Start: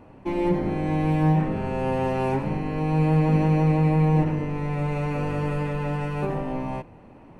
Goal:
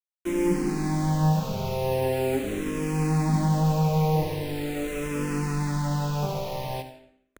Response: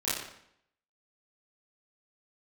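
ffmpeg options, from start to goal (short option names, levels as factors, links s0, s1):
-filter_complex "[0:a]acrusher=bits=5:mix=0:aa=0.000001,asplit=2[s0][s1];[1:a]atrim=start_sample=2205,adelay=41[s2];[s1][s2]afir=irnorm=-1:irlink=0,volume=0.158[s3];[s0][s3]amix=inputs=2:normalize=0,asplit=2[s4][s5];[s5]afreqshift=-0.42[s6];[s4][s6]amix=inputs=2:normalize=1"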